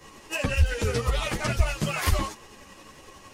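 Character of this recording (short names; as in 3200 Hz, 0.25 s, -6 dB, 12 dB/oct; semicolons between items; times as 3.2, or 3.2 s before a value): tremolo saw up 11 Hz, depth 40%; a shimmering, thickened sound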